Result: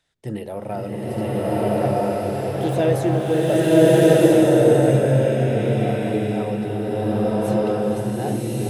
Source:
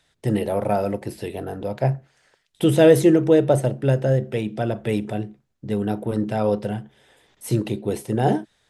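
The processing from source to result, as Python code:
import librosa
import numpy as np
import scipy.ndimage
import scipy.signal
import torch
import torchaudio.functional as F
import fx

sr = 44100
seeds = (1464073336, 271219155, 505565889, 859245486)

y = fx.self_delay(x, sr, depth_ms=0.15, at=(1.2, 2.74))
y = fx.rev_bloom(y, sr, seeds[0], attack_ms=1310, drr_db=-10.5)
y = y * 10.0 ** (-7.5 / 20.0)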